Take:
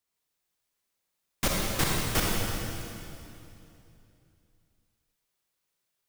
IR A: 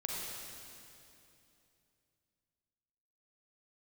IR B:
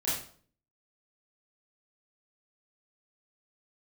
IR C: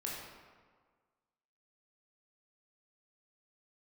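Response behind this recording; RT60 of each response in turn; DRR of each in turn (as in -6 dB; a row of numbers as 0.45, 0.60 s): A; 2.8, 0.50, 1.6 s; -3.0, -10.0, -4.0 dB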